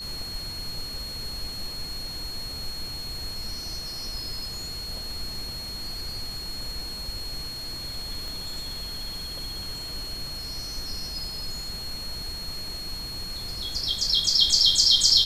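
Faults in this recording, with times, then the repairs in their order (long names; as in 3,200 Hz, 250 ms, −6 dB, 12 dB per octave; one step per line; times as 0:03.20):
whistle 4,300 Hz −34 dBFS
0:08.28: click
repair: click removal
notch filter 4,300 Hz, Q 30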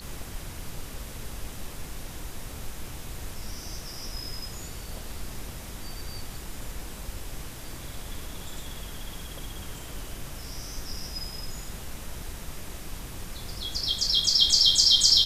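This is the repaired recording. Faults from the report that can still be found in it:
0:08.28: click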